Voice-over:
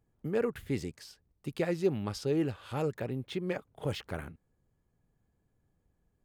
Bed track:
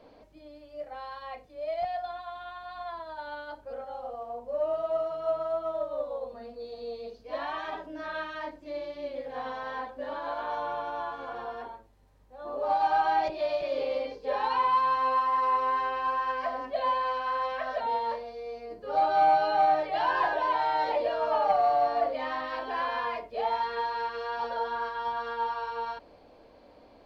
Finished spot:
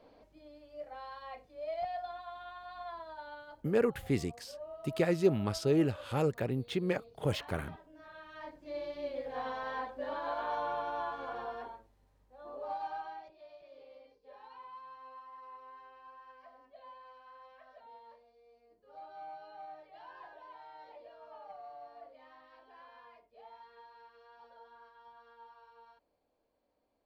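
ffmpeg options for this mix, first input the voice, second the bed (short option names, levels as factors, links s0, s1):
-filter_complex "[0:a]adelay=3400,volume=1.26[s0];[1:a]volume=2.66,afade=t=out:st=3.03:d=0.78:silence=0.281838,afade=t=in:st=8.22:d=0.68:silence=0.199526,afade=t=out:st=11.29:d=1.97:silence=0.0749894[s1];[s0][s1]amix=inputs=2:normalize=0"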